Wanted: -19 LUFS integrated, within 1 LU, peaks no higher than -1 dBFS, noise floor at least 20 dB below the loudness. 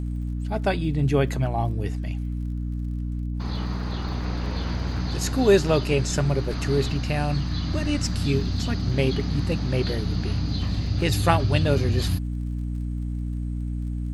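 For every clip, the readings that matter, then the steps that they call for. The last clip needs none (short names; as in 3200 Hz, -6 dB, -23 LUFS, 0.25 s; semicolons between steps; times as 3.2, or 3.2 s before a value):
ticks 42/s; hum 60 Hz; harmonics up to 300 Hz; hum level -26 dBFS; loudness -25.5 LUFS; peak -3.5 dBFS; loudness target -19.0 LUFS
-> de-click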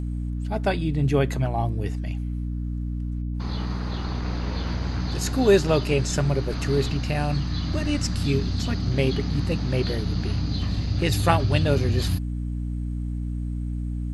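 ticks 0.14/s; hum 60 Hz; harmonics up to 300 Hz; hum level -26 dBFS
-> de-hum 60 Hz, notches 5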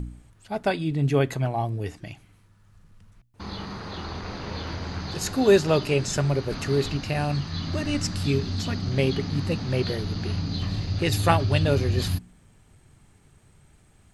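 hum none; loudness -26.0 LUFS; peak -4.5 dBFS; loudness target -19.0 LUFS
-> gain +7 dB; limiter -1 dBFS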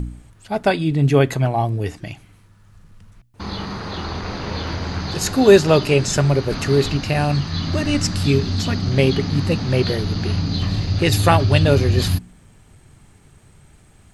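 loudness -19.0 LUFS; peak -1.0 dBFS; noise floor -51 dBFS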